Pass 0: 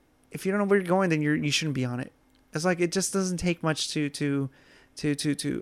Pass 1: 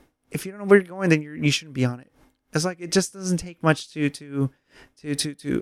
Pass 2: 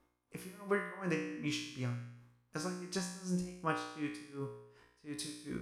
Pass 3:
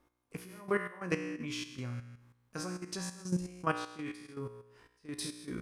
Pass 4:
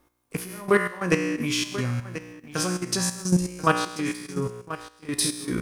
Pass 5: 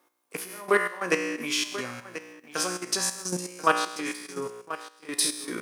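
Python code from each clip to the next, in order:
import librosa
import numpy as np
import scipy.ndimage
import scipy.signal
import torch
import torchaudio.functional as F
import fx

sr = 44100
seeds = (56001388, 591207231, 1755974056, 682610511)

y1 = x * 10.0 ** (-24 * (0.5 - 0.5 * np.cos(2.0 * np.pi * 2.7 * np.arange(len(x)) / sr)) / 20.0)
y1 = y1 * librosa.db_to_amplitude(8.5)
y2 = fx.peak_eq(y1, sr, hz=1100.0, db=9.5, octaves=0.38)
y2 = fx.comb_fb(y2, sr, f0_hz=60.0, decay_s=0.83, harmonics='all', damping=0.0, mix_pct=90)
y2 = y2 * librosa.db_to_amplitude(-5.0)
y3 = fx.level_steps(y2, sr, step_db=11)
y3 = y3 * librosa.db_to_amplitude(5.5)
y4 = fx.high_shelf(y3, sr, hz=7200.0, db=8.0)
y4 = y4 + 10.0 ** (-14.5 / 20.0) * np.pad(y4, (int(1036 * sr / 1000.0), 0))[:len(y4)]
y4 = fx.leveller(y4, sr, passes=1)
y4 = y4 * librosa.db_to_amplitude(8.5)
y5 = scipy.signal.sosfilt(scipy.signal.butter(2, 400.0, 'highpass', fs=sr, output='sos'), y4)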